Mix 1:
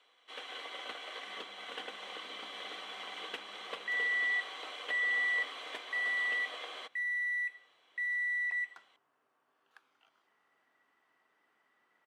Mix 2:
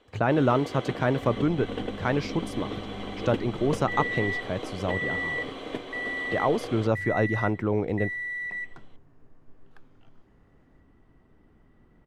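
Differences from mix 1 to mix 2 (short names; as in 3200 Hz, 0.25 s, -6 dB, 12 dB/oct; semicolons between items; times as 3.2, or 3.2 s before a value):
speech: unmuted; master: remove HPF 1100 Hz 12 dB/oct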